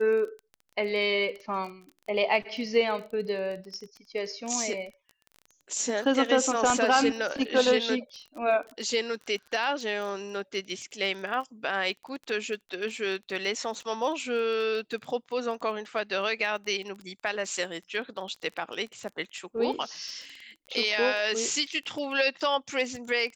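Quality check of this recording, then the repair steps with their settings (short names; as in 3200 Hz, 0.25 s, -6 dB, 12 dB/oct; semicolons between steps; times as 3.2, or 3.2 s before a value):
crackle 21/s -36 dBFS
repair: de-click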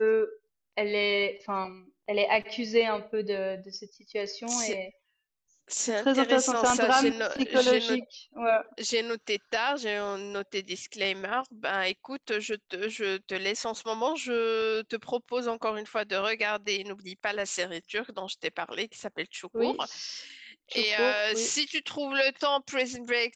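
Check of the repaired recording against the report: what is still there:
none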